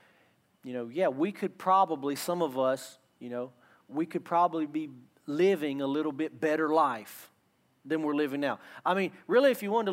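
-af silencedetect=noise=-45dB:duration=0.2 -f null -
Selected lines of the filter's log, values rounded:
silence_start: 0.00
silence_end: 0.63 | silence_duration: 0.63
silence_start: 2.93
silence_end: 3.22 | silence_duration: 0.28
silence_start: 3.48
silence_end: 3.90 | silence_duration: 0.41
silence_start: 4.98
silence_end: 5.28 | silence_duration: 0.30
silence_start: 7.26
silence_end: 7.86 | silence_duration: 0.60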